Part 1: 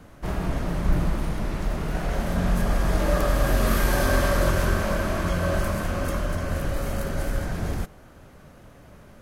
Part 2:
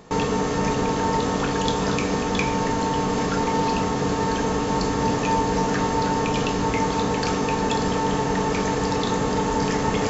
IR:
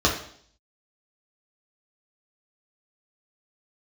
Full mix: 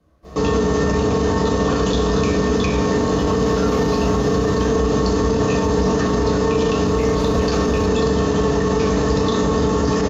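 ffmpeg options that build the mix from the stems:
-filter_complex "[0:a]flanger=delay=22.5:depth=6.9:speed=2.8,volume=-5dB,afade=type=in:start_time=6.83:duration=0.41:silence=0.266073,asplit=2[link_01][link_02];[link_02]volume=-12dB[link_03];[1:a]adelay=250,volume=-5.5dB,asplit=2[link_04][link_05];[link_05]volume=-7dB[link_06];[2:a]atrim=start_sample=2205[link_07];[link_03][link_06]amix=inputs=2:normalize=0[link_08];[link_08][link_07]afir=irnorm=-1:irlink=0[link_09];[link_01][link_04][link_09]amix=inputs=3:normalize=0,alimiter=limit=-9.5dB:level=0:latency=1:release=26"

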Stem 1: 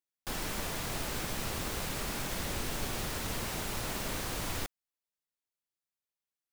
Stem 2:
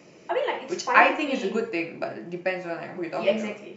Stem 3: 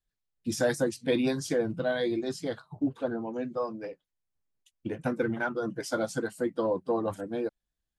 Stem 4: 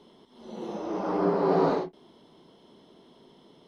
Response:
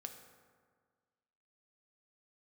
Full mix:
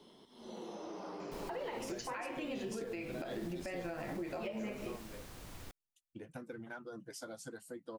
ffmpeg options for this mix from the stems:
-filter_complex "[0:a]adelay=1050,volume=-17dB[link_01];[1:a]adelay=1200,volume=-2.5dB[link_02];[2:a]adelay=1300,volume=-14.5dB[link_03];[3:a]acrossover=split=290|2300[link_04][link_05][link_06];[link_04]acompressor=threshold=-47dB:ratio=4[link_07];[link_05]acompressor=threshold=-37dB:ratio=4[link_08];[link_06]acompressor=threshold=-54dB:ratio=4[link_09];[link_07][link_08][link_09]amix=inputs=3:normalize=0,volume=-5dB[link_10];[link_03][link_10]amix=inputs=2:normalize=0,highshelf=frequency=4800:gain=9.5,acompressor=threshold=-42dB:ratio=6,volume=0dB[link_11];[link_01][link_02]amix=inputs=2:normalize=0,lowshelf=frequency=420:gain=5,acompressor=threshold=-34dB:ratio=6,volume=0dB[link_12];[link_11][link_12]amix=inputs=2:normalize=0,alimiter=level_in=8dB:limit=-24dB:level=0:latency=1:release=91,volume=-8dB"

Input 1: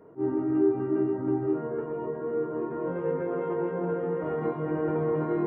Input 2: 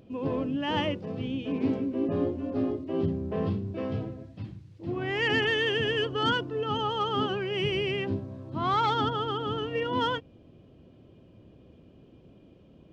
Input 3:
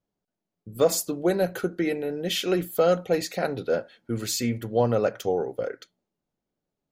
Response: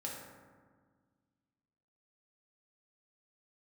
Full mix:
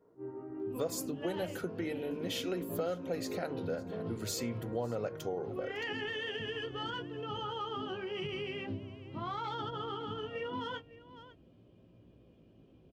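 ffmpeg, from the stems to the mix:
-filter_complex "[0:a]volume=-11dB[link_01];[1:a]adelay=600,volume=-4dB,asplit=2[link_02][link_03];[link_03]volume=-22.5dB[link_04];[2:a]volume=-5dB,asplit=2[link_05][link_06];[link_06]volume=-20dB[link_07];[link_01][link_02]amix=inputs=2:normalize=0,flanger=delay=17:depth=2.2:speed=0.42,alimiter=level_in=2.5dB:limit=-24dB:level=0:latency=1:release=57,volume=-2.5dB,volume=0dB[link_08];[link_04][link_07]amix=inputs=2:normalize=0,aecho=0:1:555:1[link_09];[link_05][link_08][link_09]amix=inputs=3:normalize=0,acompressor=threshold=-36dB:ratio=2.5"

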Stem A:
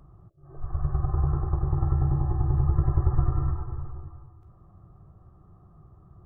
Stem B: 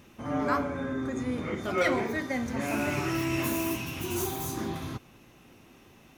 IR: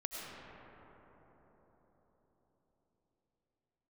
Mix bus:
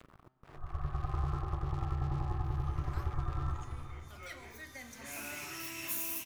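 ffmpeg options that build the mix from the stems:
-filter_complex "[0:a]alimiter=limit=-15.5dB:level=0:latency=1:release=218,aeval=exprs='sgn(val(0))*max(abs(val(0))-0.00398,0)':channel_layout=same,volume=-2dB,asplit=2[link_01][link_02];[link_02]volume=-19dB[link_03];[1:a]highshelf=frequency=6800:gain=9.5,adelay=2450,volume=-14.5dB,afade=type=in:start_time=4.35:duration=0.79:silence=0.375837[link_04];[2:a]atrim=start_sample=2205[link_05];[link_03][link_05]afir=irnorm=-1:irlink=0[link_06];[link_01][link_04][link_06]amix=inputs=3:normalize=0,tiltshelf=frequency=970:gain=-7.5,bandreject=frequency=128.3:width_type=h:width=4,bandreject=frequency=256.6:width_type=h:width=4,bandreject=frequency=384.9:width_type=h:width=4,bandreject=frequency=513.2:width_type=h:width=4,bandreject=frequency=641.5:width_type=h:width=4,bandreject=frequency=769.8:width_type=h:width=4,bandreject=frequency=898.1:width_type=h:width=4,bandreject=frequency=1026.4:width_type=h:width=4,bandreject=frequency=1154.7:width_type=h:width=4,bandreject=frequency=1283:width_type=h:width=4,bandreject=frequency=1411.3:width_type=h:width=4,bandreject=frequency=1539.6:width_type=h:width=4,bandreject=frequency=1667.9:width_type=h:width=4,bandreject=frequency=1796.2:width_type=h:width=4,bandreject=frequency=1924.5:width_type=h:width=4,bandreject=frequency=2052.8:width_type=h:width=4,bandreject=frequency=2181.1:width_type=h:width=4,bandreject=frequency=2309.4:width_type=h:width=4,bandreject=frequency=2437.7:width_type=h:width=4,bandreject=frequency=2566:width_type=h:width=4,bandreject=frequency=2694.3:width_type=h:width=4,bandreject=frequency=2822.6:width_type=h:width=4,bandreject=frequency=2950.9:width_type=h:width=4,bandreject=frequency=3079.2:width_type=h:width=4,bandreject=frequency=3207.5:width_type=h:width=4,bandreject=frequency=3335.8:width_type=h:width=4,bandreject=frequency=3464.1:width_type=h:width=4,bandreject=frequency=3592.4:width_type=h:width=4,bandreject=frequency=3720.7:width_type=h:width=4,bandreject=frequency=3849:width_type=h:width=4,bandreject=frequency=3977.3:width_type=h:width=4,bandreject=frequency=4105.6:width_type=h:width=4,bandreject=frequency=4233.9:width_type=h:width=4,bandreject=frequency=4362.2:width_type=h:width=4,bandreject=frequency=4490.5:width_type=h:width=4,bandreject=frequency=4618.8:width_type=h:width=4,bandreject=frequency=4747.1:width_type=h:width=4,bandreject=frequency=4875.4:width_type=h:width=4,bandreject=frequency=5003.7:width_type=h:width=4,acompressor=mode=upward:threshold=-45dB:ratio=2.5"

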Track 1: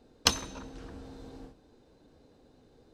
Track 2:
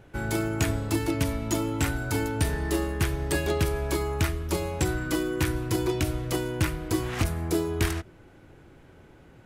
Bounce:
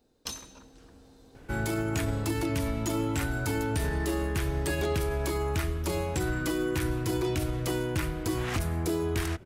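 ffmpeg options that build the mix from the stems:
ffmpeg -i stem1.wav -i stem2.wav -filter_complex "[0:a]aemphasis=mode=production:type=50kf,volume=-9dB[link_01];[1:a]adelay=1350,volume=0.5dB[link_02];[link_01][link_02]amix=inputs=2:normalize=0,alimiter=limit=-20.5dB:level=0:latency=1:release=36" out.wav

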